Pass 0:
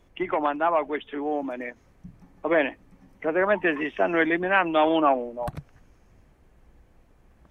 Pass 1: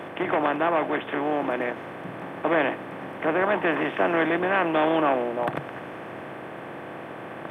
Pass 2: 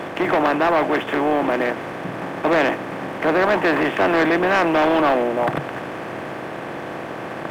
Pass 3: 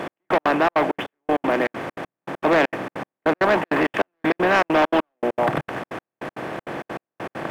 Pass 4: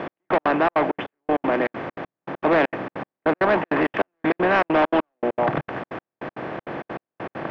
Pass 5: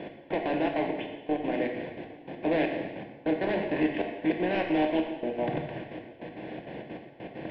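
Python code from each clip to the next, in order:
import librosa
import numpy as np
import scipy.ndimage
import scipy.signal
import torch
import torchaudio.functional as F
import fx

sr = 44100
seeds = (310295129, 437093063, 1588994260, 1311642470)

y1 = fx.bin_compress(x, sr, power=0.4)
y1 = scipy.signal.sosfilt(scipy.signal.butter(4, 120.0, 'highpass', fs=sr, output='sos'), y1)
y1 = fx.low_shelf(y1, sr, hz=440.0, db=5.5)
y1 = y1 * librosa.db_to_amplitude(-7.0)
y2 = fx.leveller(y1, sr, passes=2)
y3 = fx.step_gate(y2, sr, bpm=198, pattern='x...x.xxx.xx.', floor_db=-60.0, edge_ms=4.5)
y4 = fx.air_absorb(y3, sr, metres=210.0)
y5 = fx.fixed_phaser(y4, sr, hz=3000.0, stages=4)
y5 = y5 + 10.0 ** (-21.0 / 20.0) * np.pad(y5, (int(808 * sr / 1000.0), 0))[:len(y5)]
y5 = fx.rev_gated(y5, sr, seeds[0], gate_ms=390, shape='falling', drr_db=2.0)
y5 = y5 * librosa.db_to_amplitude(-7.0)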